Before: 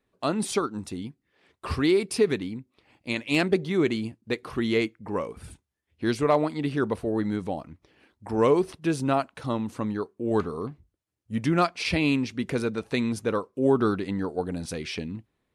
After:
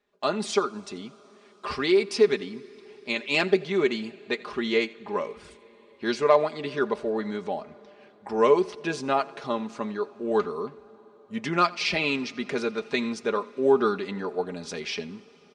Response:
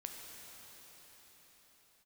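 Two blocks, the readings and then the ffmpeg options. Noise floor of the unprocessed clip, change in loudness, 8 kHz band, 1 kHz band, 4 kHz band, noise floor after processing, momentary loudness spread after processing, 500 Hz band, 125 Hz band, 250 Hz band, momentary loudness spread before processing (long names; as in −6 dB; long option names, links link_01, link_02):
−78 dBFS, +0.5 dB, −2.0 dB, +2.0 dB, +3.0 dB, −55 dBFS, 14 LU, +2.0 dB, −9.0 dB, −4.0 dB, 12 LU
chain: -filter_complex "[0:a]lowpass=frequency=6800:width=0.5412,lowpass=frequency=6800:width=1.3066,bass=frequency=250:gain=-13,treble=frequency=4000:gain=1,aecho=1:1:4.9:0.63,aecho=1:1:86:0.075,asplit=2[link_01][link_02];[1:a]atrim=start_sample=2205[link_03];[link_02][link_03]afir=irnorm=-1:irlink=0,volume=-15dB[link_04];[link_01][link_04]amix=inputs=2:normalize=0"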